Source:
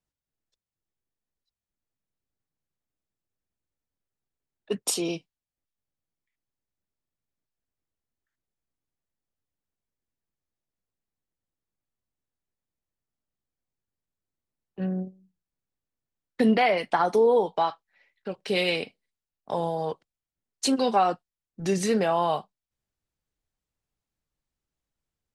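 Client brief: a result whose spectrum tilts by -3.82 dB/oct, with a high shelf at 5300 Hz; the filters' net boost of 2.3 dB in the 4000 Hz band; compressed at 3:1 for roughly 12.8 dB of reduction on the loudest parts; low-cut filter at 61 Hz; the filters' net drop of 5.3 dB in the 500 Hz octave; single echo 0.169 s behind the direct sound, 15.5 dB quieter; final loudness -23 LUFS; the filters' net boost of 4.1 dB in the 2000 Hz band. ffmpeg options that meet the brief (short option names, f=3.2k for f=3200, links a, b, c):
-af "highpass=61,equalizer=f=500:t=o:g=-6.5,equalizer=f=2k:t=o:g=5,equalizer=f=4k:t=o:g=3.5,highshelf=f=5.3k:g=-5.5,acompressor=threshold=-36dB:ratio=3,aecho=1:1:169:0.168,volume=14.5dB"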